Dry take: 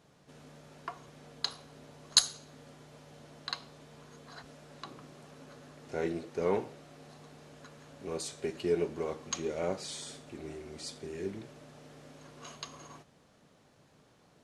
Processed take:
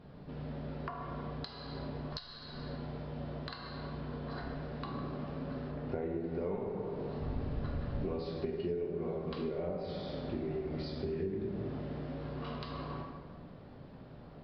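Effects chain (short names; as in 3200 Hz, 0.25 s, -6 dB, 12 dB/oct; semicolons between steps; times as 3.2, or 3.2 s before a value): 7.2–8.04 octaver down 1 oct, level +2 dB; plate-style reverb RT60 1.5 s, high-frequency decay 0.65×, DRR -0.5 dB; downsampling 11025 Hz; 5.71–6.24 high shelf 3700 Hz -8.5 dB; compressor 8:1, threshold -42 dBFS, peak gain reduction 24 dB; tilt -3 dB/oct; gain +4 dB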